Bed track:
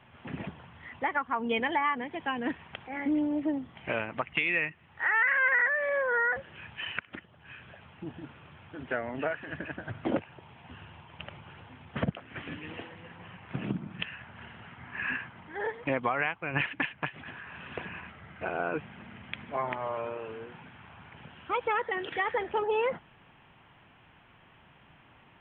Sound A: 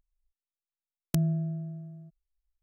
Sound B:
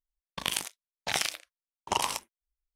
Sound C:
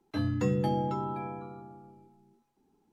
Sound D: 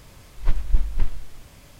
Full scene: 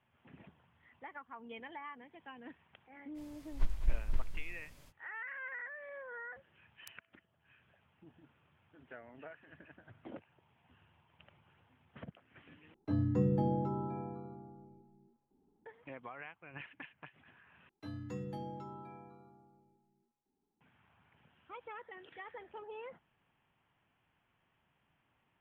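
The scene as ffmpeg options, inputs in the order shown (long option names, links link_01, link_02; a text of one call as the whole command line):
ffmpeg -i bed.wav -i cue0.wav -i cue1.wav -i cue2.wav -i cue3.wav -filter_complex "[3:a]asplit=2[link_01][link_02];[0:a]volume=-19dB[link_03];[4:a]aecho=1:1:207:0.355[link_04];[1:a]highpass=frequency=1100:width=0.5412,highpass=frequency=1100:width=1.3066[link_05];[link_01]tiltshelf=frequency=1400:gain=9.5[link_06];[link_03]asplit=3[link_07][link_08][link_09];[link_07]atrim=end=12.744[link_10];[link_06]atrim=end=2.92,asetpts=PTS-STARTPTS,volume=-11dB[link_11];[link_08]atrim=start=15.656:end=17.694[link_12];[link_02]atrim=end=2.92,asetpts=PTS-STARTPTS,volume=-14.5dB[link_13];[link_09]atrim=start=20.606[link_14];[link_04]atrim=end=1.79,asetpts=PTS-STARTPTS,volume=-12dB,afade=type=in:duration=0.05,afade=type=out:start_time=1.74:duration=0.05,adelay=3140[link_15];[link_05]atrim=end=2.62,asetpts=PTS-STARTPTS,volume=-17dB,afade=type=in:duration=0.004:curve=hsin,afade=type=out:start_time=2.616:duration=0.004:curve=hsin,adelay=252693S[link_16];[link_10][link_11]acrossfade=duration=0.004:curve1=hsin:curve2=hsin[link_17];[link_17][link_12]acrossfade=duration=0.004:curve1=hsin:curve2=hsin[link_18];[link_18][link_13]acrossfade=duration=0.004:curve1=hsin:curve2=hsin[link_19];[link_19][link_14]acrossfade=duration=0.004:curve1=hsin:curve2=hsin[link_20];[link_20][link_15][link_16]amix=inputs=3:normalize=0" out.wav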